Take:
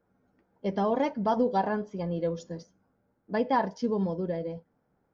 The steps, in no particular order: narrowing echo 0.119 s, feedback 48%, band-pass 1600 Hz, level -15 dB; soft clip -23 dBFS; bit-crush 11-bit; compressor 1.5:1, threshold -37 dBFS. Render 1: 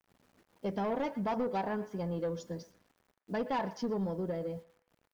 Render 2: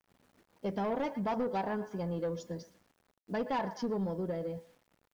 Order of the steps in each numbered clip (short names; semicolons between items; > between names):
soft clip > bit-crush > compressor > narrowing echo; narrowing echo > soft clip > bit-crush > compressor